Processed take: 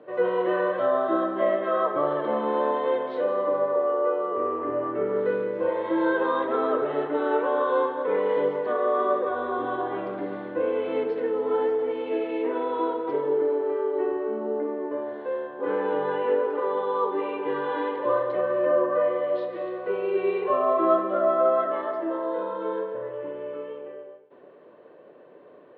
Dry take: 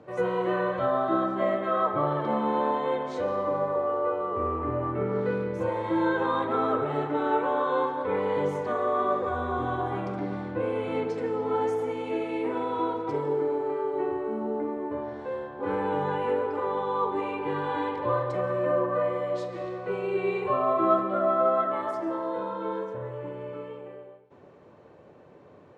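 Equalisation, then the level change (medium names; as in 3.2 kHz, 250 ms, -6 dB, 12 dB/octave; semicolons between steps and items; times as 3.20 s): distance through air 230 m; cabinet simulation 400–3900 Hz, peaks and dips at 830 Hz -10 dB, 1.3 kHz -6 dB, 2.3 kHz -7 dB; +7.0 dB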